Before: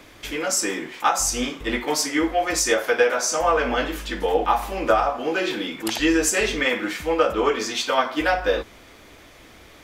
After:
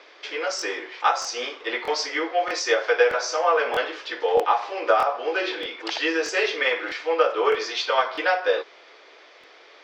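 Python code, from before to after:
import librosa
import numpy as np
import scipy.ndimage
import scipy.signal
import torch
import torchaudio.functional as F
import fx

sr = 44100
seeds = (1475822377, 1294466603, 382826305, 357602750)

y = scipy.signal.sosfilt(scipy.signal.ellip(3, 1.0, 40, [410.0, 5100.0], 'bandpass', fs=sr, output='sos'), x)
y = fx.buffer_crackle(y, sr, first_s=0.57, period_s=0.63, block=1024, kind='repeat')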